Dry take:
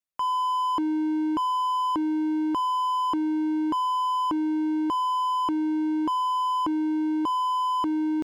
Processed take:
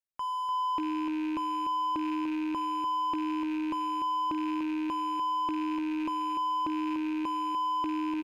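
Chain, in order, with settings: rattling part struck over -39 dBFS, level -26 dBFS; low shelf 110 Hz +5 dB; feedback echo 0.296 s, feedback 27%, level -7.5 dB; gain -7.5 dB

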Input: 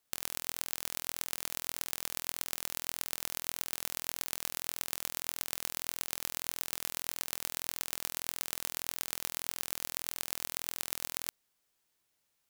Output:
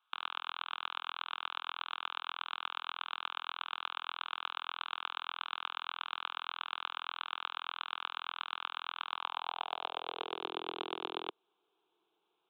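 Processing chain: fixed phaser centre 380 Hz, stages 8; downsampling 8000 Hz; high-pass sweep 1300 Hz -> 360 Hz, 8.99–10.51; gain +8.5 dB

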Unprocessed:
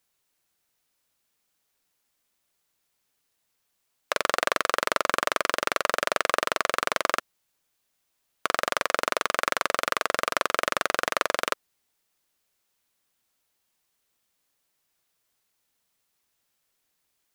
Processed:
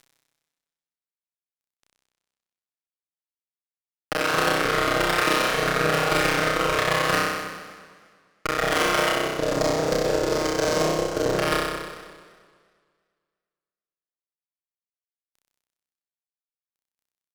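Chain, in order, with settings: cycle switcher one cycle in 3, muted; rotary speaker horn 1.1 Hz, later 7 Hz, at 11.69; level quantiser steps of 14 dB; 9.11–11.38 Chebyshev band-stop 520–6700 Hz, order 2; upward compressor, threshold -27 dBFS; air absorption 150 m; comb 6.4 ms, depth 72%; fuzz box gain 36 dB, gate -45 dBFS; flutter echo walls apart 5.4 m, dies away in 1.3 s; warbling echo 0.114 s, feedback 67%, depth 194 cents, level -17 dB; gain -4 dB

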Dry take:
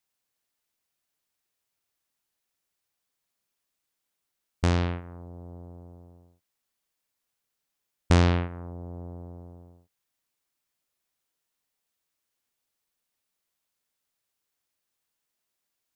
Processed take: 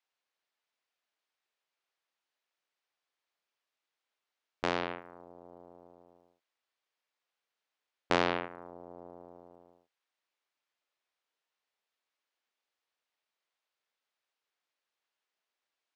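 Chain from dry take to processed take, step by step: BPF 440–3900 Hz

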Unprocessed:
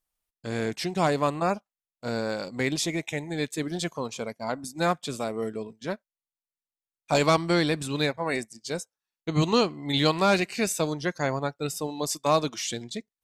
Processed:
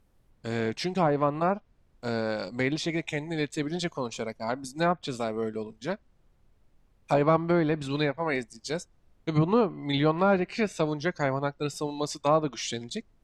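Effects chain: added noise brown -62 dBFS; treble ducked by the level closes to 1300 Hz, closed at -19 dBFS

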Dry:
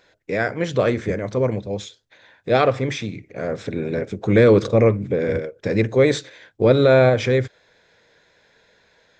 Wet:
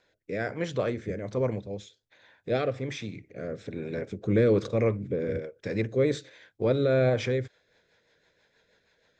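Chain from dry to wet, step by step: rotary speaker horn 1.2 Hz, later 6.3 Hz, at 7.02; gain -7 dB

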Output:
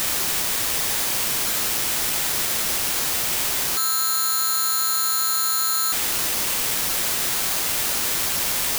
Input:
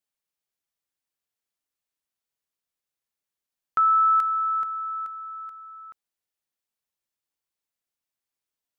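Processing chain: infinite clipping; careless resampling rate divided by 8×, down none, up zero stuff

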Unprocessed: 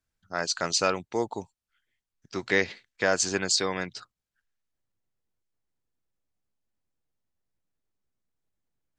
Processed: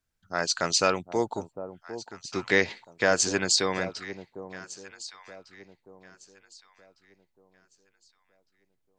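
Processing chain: echo with dull and thin repeats by turns 0.753 s, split 880 Hz, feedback 52%, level -11.5 dB; gain +1.5 dB

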